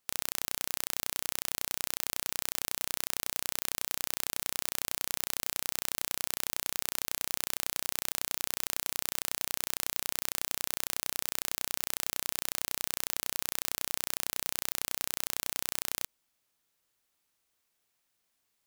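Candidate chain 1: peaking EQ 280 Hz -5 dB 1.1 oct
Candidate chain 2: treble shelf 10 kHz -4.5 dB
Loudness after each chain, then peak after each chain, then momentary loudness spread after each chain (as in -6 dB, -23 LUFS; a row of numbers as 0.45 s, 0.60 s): -33.0 LUFS, -35.0 LUFS; -4.5 dBFS, -6.5 dBFS; 0 LU, 0 LU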